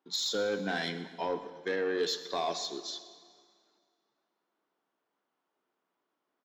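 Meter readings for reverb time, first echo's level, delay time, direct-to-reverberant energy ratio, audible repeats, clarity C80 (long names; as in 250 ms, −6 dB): 2.0 s, −18.0 dB, 125 ms, 10.5 dB, 1, 12.5 dB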